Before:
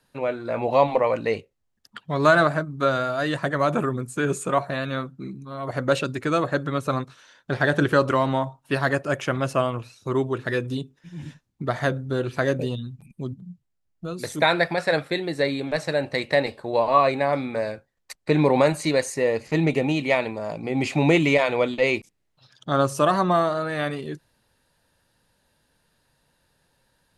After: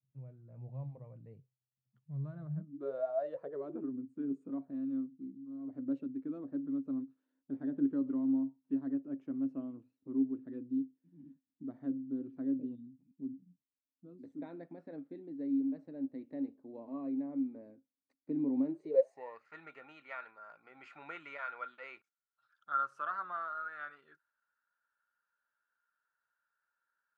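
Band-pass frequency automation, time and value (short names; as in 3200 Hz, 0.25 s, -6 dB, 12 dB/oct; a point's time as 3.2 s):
band-pass, Q 17
2.48 s 130 Hz
3.08 s 730 Hz
3.93 s 270 Hz
18.66 s 270 Hz
19.47 s 1400 Hz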